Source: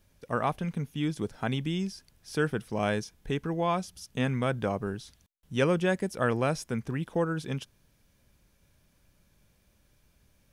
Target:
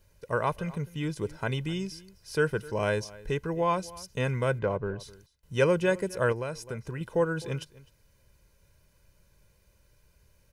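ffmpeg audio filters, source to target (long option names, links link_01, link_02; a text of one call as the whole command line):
ffmpeg -i in.wav -filter_complex "[0:a]asplit=3[link_01][link_02][link_03];[link_01]afade=type=out:start_time=4.58:duration=0.02[link_04];[link_02]adynamicsmooth=sensitivity=1:basefreq=2600,afade=type=in:start_time=4.58:duration=0.02,afade=type=out:start_time=4.99:duration=0.02[link_05];[link_03]afade=type=in:start_time=4.99:duration=0.02[link_06];[link_04][link_05][link_06]amix=inputs=3:normalize=0,bandreject=frequency=3400:width=10,aecho=1:1:2:0.58,asplit=2[link_07][link_08];[link_08]adelay=256.6,volume=-20dB,highshelf=frequency=4000:gain=-5.77[link_09];[link_07][link_09]amix=inputs=2:normalize=0,asettb=1/sr,asplit=3[link_10][link_11][link_12];[link_10]atrim=end=6.324[link_13];[link_11]atrim=start=6.32:end=7.01,asetpts=PTS-STARTPTS,afade=type=in:duration=0.004:curve=qsin,afade=type=out:start_time=0.686:duration=0.004:curve=qsin,acompressor=threshold=-33dB:ratio=3[link_14];[link_12]atrim=start=7.006[link_15];[link_13][link_14]acrossfade=duration=0.004:curve1=hsin:curve2=qsin[link_16];[link_16][link_15]acrossfade=duration=0.004:curve1=qsin:curve2=hsin" out.wav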